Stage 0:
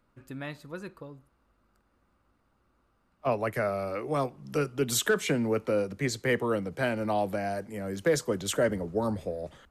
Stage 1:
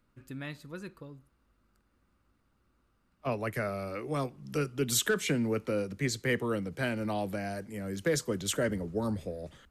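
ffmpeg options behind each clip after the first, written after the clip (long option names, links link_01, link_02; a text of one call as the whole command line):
ffmpeg -i in.wav -af "equalizer=frequency=750:width_type=o:width=1.7:gain=-7" out.wav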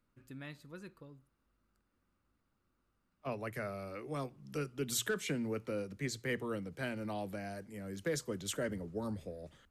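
ffmpeg -i in.wav -af "bandreject=frequency=60:width_type=h:width=6,bandreject=frequency=120:width_type=h:width=6,volume=-7dB" out.wav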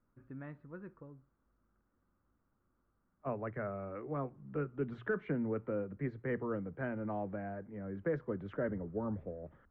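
ffmpeg -i in.wav -af "lowpass=frequency=1600:width=0.5412,lowpass=frequency=1600:width=1.3066,volume=1.5dB" out.wav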